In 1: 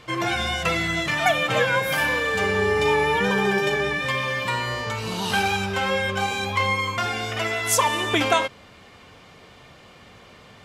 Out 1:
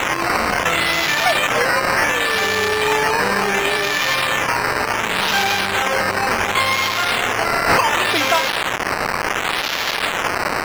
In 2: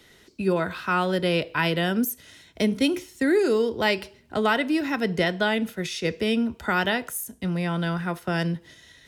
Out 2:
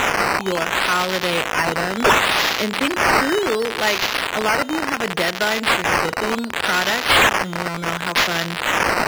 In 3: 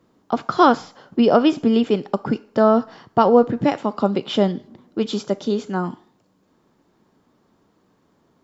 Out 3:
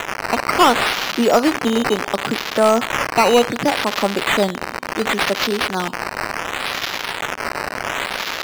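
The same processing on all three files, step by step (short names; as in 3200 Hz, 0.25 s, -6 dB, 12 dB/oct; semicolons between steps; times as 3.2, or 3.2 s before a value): switching spikes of -12 dBFS; decimation with a swept rate 9×, swing 100% 0.69 Hz; overdrive pedal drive 9 dB, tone 3600 Hz, clips at -1 dBFS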